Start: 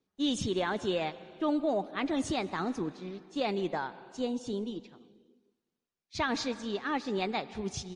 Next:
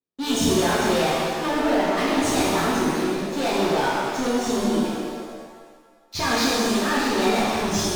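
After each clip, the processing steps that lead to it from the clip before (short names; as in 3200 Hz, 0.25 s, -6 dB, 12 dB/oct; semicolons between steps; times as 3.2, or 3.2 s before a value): sample leveller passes 5; shimmer reverb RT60 1.6 s, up +7 st, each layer -8 dB, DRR -7 dB; gain -7.5 dB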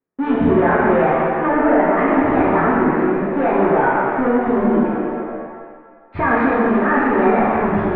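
steep low-pass 2000 Hz 36 dB/oct; low shelf 140 Hz -3.5 dB; in parallel at -2 dB: compressor, threshold -32 dBFS, peak gain reduction 14.5 dB; on the sum: gain +5.5 dB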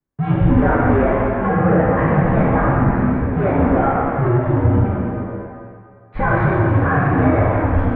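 low shelf 140 Hz +11 dB; frequency shift -120 Hz; gain -1.5 dB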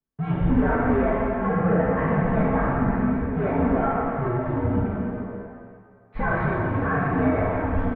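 comb 4.5 ms, depth 44%; gain -7 dB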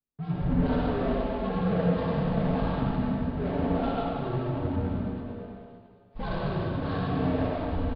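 median filter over 25 samples; on a send at -1.5 dB: reverb RT60 0.75 s, pre-delay 82 ms; on the sum: downsampling 11025 Hz; gain -7.5 dB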